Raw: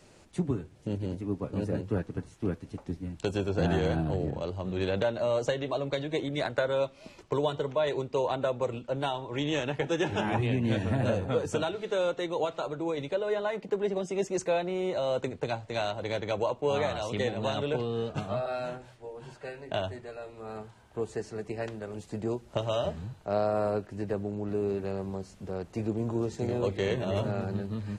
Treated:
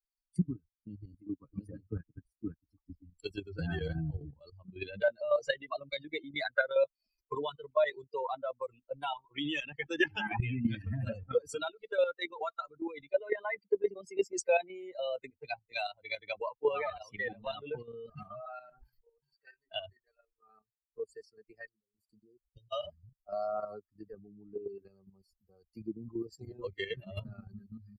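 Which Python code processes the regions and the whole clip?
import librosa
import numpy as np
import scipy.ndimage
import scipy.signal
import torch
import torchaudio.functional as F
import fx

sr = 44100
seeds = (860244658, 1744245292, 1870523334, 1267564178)

y = fx.chain(x, sr, fx.high_shelf(hz=3000.0, db=-5.0),
    fx.sustainer(db_per_s=45.0), at=(16.69, 19.08))
y = fx.chain(y, sr, fx.peak_eq(hz=2800.0, db=-9.0, octaves=0.39),
    fx.level_steps(step_db=9),
    fx.brickwall_bandstop(low_hz=550.0, high_hz=2500.0), at=(21.66, 22.72))
y = fx.bin_expand(y, sr, power=3.0)
y = fx.peak_eq(y, sr, hz=2000.0, db=9.0, octaves=1.5)
y = fx.level_steps(y, sr, step_db=10)
y = F.gain(torch.from_numpy(y), 6.0).numpy()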